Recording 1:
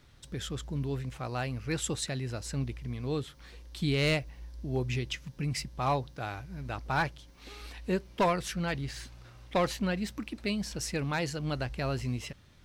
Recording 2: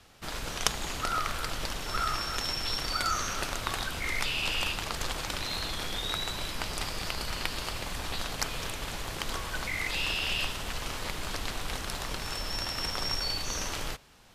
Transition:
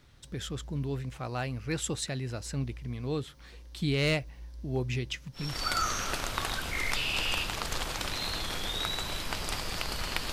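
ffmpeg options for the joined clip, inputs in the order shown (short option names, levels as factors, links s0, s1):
-filter_complex "[0:a]apad=whole_dur=10.32,atrim=end=10.32,atrim=end=5.68,asetpts=PTS-STARTPTS[s0];[1:a]atrim=start=2.61:end=7.61,asetpts=PTS-STARTPTS[s1];[s0][s1]acrossfade=d=0.36:c1=tri:c2=tri"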